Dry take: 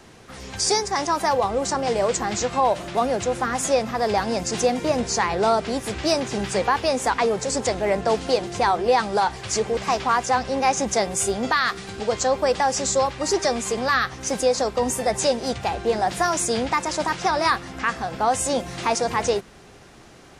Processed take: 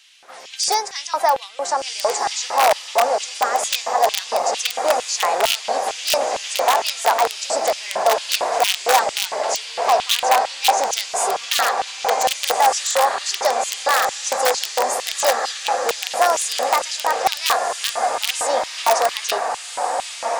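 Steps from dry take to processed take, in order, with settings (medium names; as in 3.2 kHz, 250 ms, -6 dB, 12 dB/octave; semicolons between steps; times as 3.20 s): echo that smears into a reverb 1495 ms, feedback 62%, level -5 dB; integer overflow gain 10.5 dB; LFO high-pass square 2.2 Hz 690–3000 Hz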